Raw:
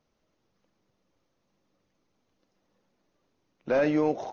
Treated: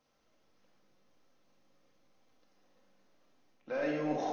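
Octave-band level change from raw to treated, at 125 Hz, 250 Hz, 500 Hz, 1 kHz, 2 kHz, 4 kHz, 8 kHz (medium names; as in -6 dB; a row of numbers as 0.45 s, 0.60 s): -8.0 dB, -8.5 dB, -9.0 dB, -4.0 dB, -6.5 dB, -4.0 dB, no reading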